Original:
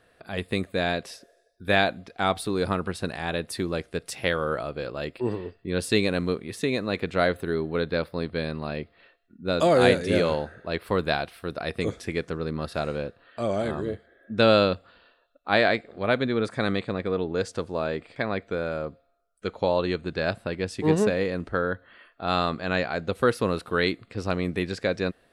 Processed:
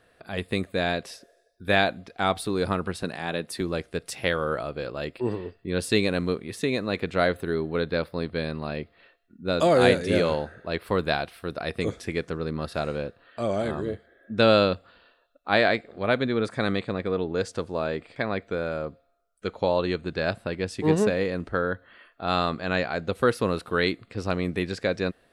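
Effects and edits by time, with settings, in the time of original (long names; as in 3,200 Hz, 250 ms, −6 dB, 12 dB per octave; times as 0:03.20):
0:03.03–0:03.61: Chebyshev high-pass filter 160 Hz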